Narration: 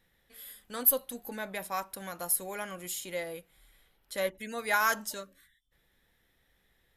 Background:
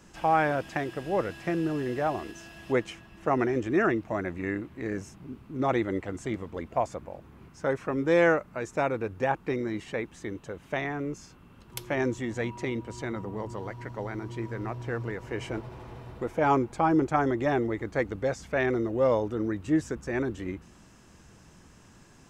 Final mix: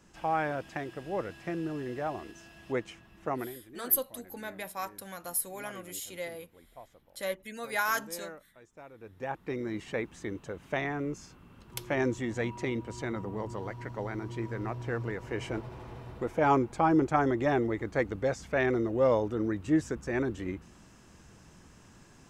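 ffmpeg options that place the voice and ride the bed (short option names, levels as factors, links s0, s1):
-filter_complex "[0:a]adelay=3050,volume=0.75[s0];[1:a]volume=5.96,afade=t=out:st=3.27:d=0.31:silence=0.149624,afade=t=in:st=8.94:d=1.02:silence=0.0841395[s1];[s0][s1]amix=inputs=2:normalize=0"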